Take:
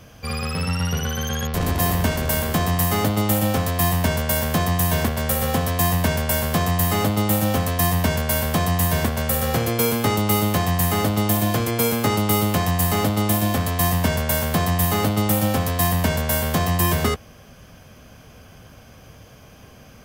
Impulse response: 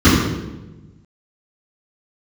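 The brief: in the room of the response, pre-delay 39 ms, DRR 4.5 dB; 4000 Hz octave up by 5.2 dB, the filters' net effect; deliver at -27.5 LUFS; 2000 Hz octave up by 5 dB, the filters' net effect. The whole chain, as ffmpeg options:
-filter_complex "[0:a]equalizer=f=2k:t=o:g=5,equalizer=f=4k:t=o:g=5,asplit=2[a][b];[1:a]atrim=start_sample=2205,adelay=39[c];[b][c]afir=irnorm=-1:irlink=0,volume=-31.5dB[d];[a][d]amix=inputs=2:normalize=0,volume=-17dB"

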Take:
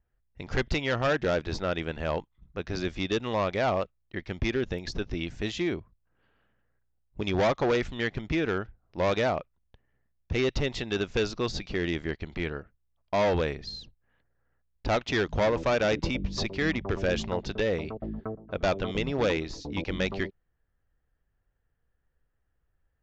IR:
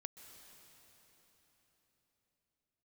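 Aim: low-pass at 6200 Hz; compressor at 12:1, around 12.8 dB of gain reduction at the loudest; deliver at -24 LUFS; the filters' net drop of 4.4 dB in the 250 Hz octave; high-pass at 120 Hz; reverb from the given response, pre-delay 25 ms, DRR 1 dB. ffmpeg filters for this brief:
-filter_complex "[0:a]highpass=120,lowpass=6.2k,equalizer=f=250:t=o:g=-6,acompressor=threshold=-35dB:ratio=12,asplit=2[a][b];[1:a]atrim=start_sample=2205,adelay=25[c];[b][c]afir=irnorm=-1:irlink=0,volume=4dB[d];[a][d]amix=inputs=2:normalize=0,volume=14dB"

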